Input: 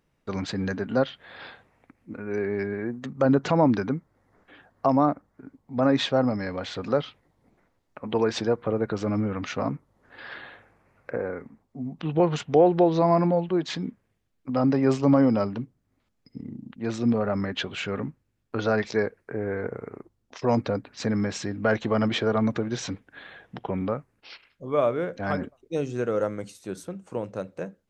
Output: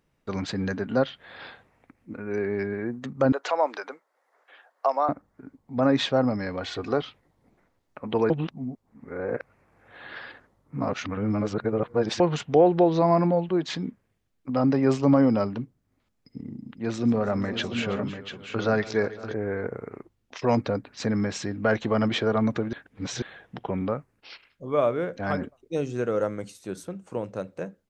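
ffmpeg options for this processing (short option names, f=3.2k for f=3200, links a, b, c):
-filter_complex "[0:a]asettb=1/sr,asplit=3[a][b][c];[a]atrim=end=3.324[d];[b]atrim=start=3.32:end=5.09,asetpts=PTS-STARTPTS,afade=t=in:d=0.004:c=qsin,afade=t=out:st=1.766:d=0.004:c=qsin,highpass=f=520:w=0.5412,highpass=f=520:w=1.3066[e];[c]atrim=start=5.086[f];[d][e]acrossfade=d=0.004:c1=hsin:c2=qsin[g];[g][f]acrossfade=d=0.004:c1=qsin:c2=hsin,asettb=1/sr,asplit=3[h][i][j];[h]atrim=end=6.614[k];[i]atrim=start=6.61:end=7.02,asetpts=PTS-STARTPTS,afade=t=in:d=0.004:c=qsin,afade=t=out:st=0.406:d=0.004:c=qsin,aecho=1:1:2.7:0.52,atrim=end_sample=18081[l];[j]atrim=start=7.016[m];[k][l]acrossfade=d=0.004:c1=hsin:c2=qsin[n];[n][m]acrossfade=d=0.004:c1=qsin:c2=hsin,asplit=3[o][p][q];[o]afade=t=out:st=16.43:d=0.02[r];[p]aecho=1:1:139|325|507|692:0.1|0.141|0.112|0.376,afade=t=in:st=16.43:d=0.02,afade=t=out:st=19.32:d=0.02[s];[q]afade=t=in:st=19.32:d=0.02[t];[r][s][t]amix=inputs=3:normalize=0,asettb=1/sr,asplit=3[u][v][w];[u]atrim=end=19.914[x];[v]atrim=start=19.91:end=20.57,asetpts=PTS-STARTPTS,afade=t=in:d=0.004:c=qsin,afade=t=out:st=0.656:d=0.004:c=qsin,equalizer=f=2.5k:t=o:w=1.3:g=5.5[y];[w]atrim=start=20.566[z];[x][y]acrossfade=d=0.004:c1=hsin:c2=qsin[aa];[aa][z]acrossfade=d=0.004:c1=qsin:c2=hsin,asplit=5[ab][ac][ad][ae][af];[ab]atrim=end=8.302[ag];[ac]atrim=start=8.298:end=12.202,asetpts=PTS-STARTPTS,areverse[ah];[ad]atrim=start=12.198:end=22.732[ai];[ae]atrim=start=22.728:end=23.222,asetpts=PTS-STARTPTS,areverse[aj];[af]atrim=start=23.218[ak];[ag][ah]acrossfade=d=0.004:c1=hsin:c2=hsin[al];[al][ai]acrossfade=d=0.004:c1=hsin:c2=hsin[am];[am][aj]acrossfade=d=0.004:c1=hsin:c2=hsin[an];[an][ak]acrossfade=d=0.004:c1=hsin:c2=hsin"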